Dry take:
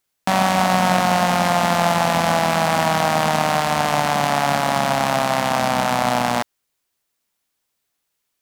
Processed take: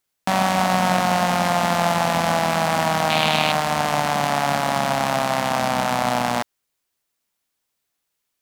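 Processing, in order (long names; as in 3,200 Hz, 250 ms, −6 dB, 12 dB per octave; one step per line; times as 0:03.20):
0:03.10–0:03.52: flat-topped bell 3,100 Hz +10 dB 1.1 octaves
level −2 dB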